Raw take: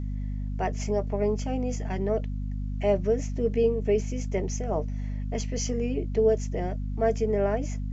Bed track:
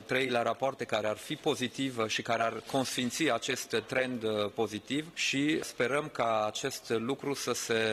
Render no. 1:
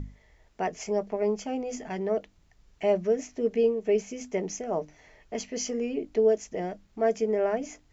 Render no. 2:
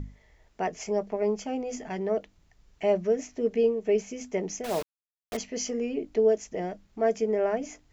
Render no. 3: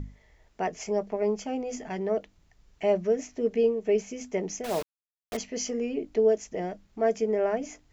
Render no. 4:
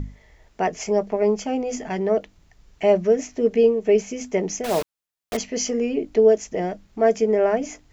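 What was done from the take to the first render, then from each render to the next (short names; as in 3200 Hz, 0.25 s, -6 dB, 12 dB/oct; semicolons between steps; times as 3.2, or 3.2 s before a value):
notches 50/100/150/200/250/300 Hz
4.64–5.37 requantised 6-bit, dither none
nothing audible
gain +7 dB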